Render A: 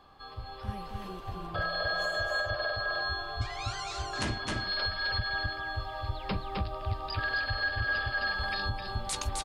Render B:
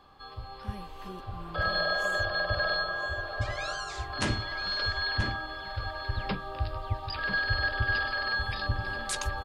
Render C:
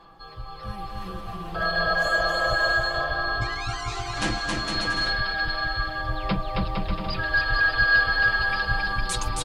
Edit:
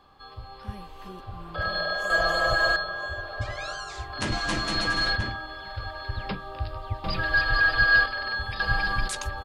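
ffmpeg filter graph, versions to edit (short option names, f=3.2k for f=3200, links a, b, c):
-filter_complex "[2:a]asplit=4[a][b][c][d];[1:a]asplit=5[e][f][g][h][i];[e]atrim=end=2.102[j];[a]atrim=start=2.098:end=2.762[k];[f]atrim=start=2.758:end=4.322[l];[b]atrim=start=4.318:end=5.162[m];[g]atrim=start=5.158:end=7.042[n];[c]atrim=start=7.038:end=8.062[o];[h]atrim=start=8.058:end=8.602[p];[d]atrim=start=8.598:end=9.082[q];[i]atrim=start=9.078[r];[j][k]acrossfade=d=0.004:c1=hsin:c2=hsin[s];[s][l]acrossfade=d=0.004:c1=hsin:c2=hsin[t];[t][m]acrossfade=d=0.004:c1=hsin:c2=hsin[u];[u][n]acrossfade=d=0.004:c1=hsin:c2=hsin[v];[v][o]acrossfade=d=0.004:c1=hsin:c2=hsin[w];[w][p]acrossfade=d=0.004:c1=hsin:c2=hsin[x];[x][q]acrossfade=d=0.004:c1=hsin:c2=hsin[y];[y][r]acrossfade=d=0.004:c1=hsin:c2=hsin"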